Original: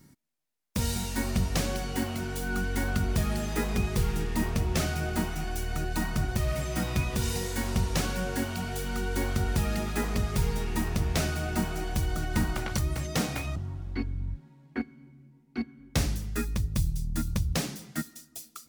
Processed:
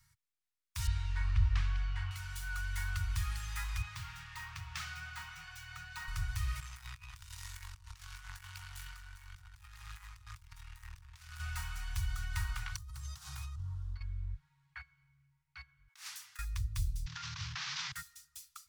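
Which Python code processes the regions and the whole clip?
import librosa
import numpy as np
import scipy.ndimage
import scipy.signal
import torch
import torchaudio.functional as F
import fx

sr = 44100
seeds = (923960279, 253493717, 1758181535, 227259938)

y = fx.chain(x, sr, fx.lowpass(hz=2900.0, slope=12),
    fx.low_shelf(hz=130.0, db=9.0), at=(0.87, 2.11))
y = fx.chain(y, sr, fx.highpass(hz=150.0, slope=12),
    fx.peak_eq(hz=11000.0, db=-10.5, octaves=1.3), at=(3.82, 6.08))
y = fx.chain(y, sr, fx.over_compress(threshold_db=-32.0, ratio=-1.0),
    fx.power_curve(exponent=2.0), at=(6.6, 11.4))
y = fx.chain(y, sr, fx.peak_eq(hz=2200.0, db=-13.0, octaves=0.96),
    fx.over_compress(threshold_db=-35.0, ratio=-1.0), at=(12.76, 14.01))
y = fx.chain(y, sr, fx.highpass(hz=350.0, slope=24),
    fx.over_compress(threshold_db=-39.0, ratio=-0.5), at=(15.88, 16.39))
y = fx.chain(y, sr, fx.cvsd(bps=32000),
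    fx.highpass(hz=170.0, slope=24),
    fx.env_flatten(amount_pct=100), at=(17.06, 17.92))
y = scipy.signal.sosfilt(scipy.signal.cheby2(4, 50, [210.0, 560.0], 'bandstop', fs=sr, output='sos'), y)
y = fx.high_shelf(y, sr, hz=11000.0, db=-5.0)
y = y * librosa.db_to_amplitude(-6.0)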